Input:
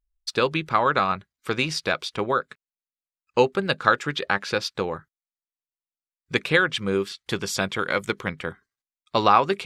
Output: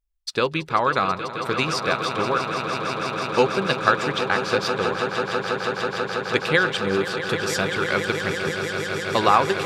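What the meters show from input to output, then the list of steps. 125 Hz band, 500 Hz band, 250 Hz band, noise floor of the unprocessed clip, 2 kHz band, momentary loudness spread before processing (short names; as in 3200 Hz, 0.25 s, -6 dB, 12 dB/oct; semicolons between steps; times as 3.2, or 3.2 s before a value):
+3.0 dB, +3.0 dB, +2.0 dB, under -85 dBFS, +2.5 dB, 10 LU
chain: on a send: swelling echo 0.163 s, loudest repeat 8, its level -12 dB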